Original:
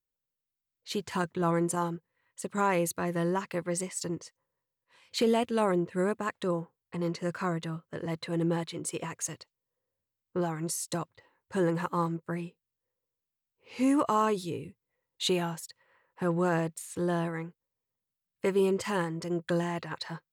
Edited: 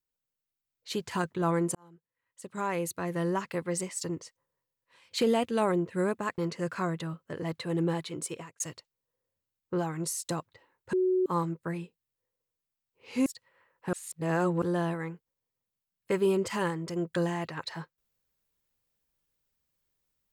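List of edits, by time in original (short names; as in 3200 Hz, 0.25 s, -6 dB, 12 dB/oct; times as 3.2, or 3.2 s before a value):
1.75–3.36 fade in
6.38–7.01 cut
8.85–9.23 fade out
11.56–11.89 bleep 370 Hz -22.5 dBFS
13.89–15.6 cut
16.27–16.96 reverse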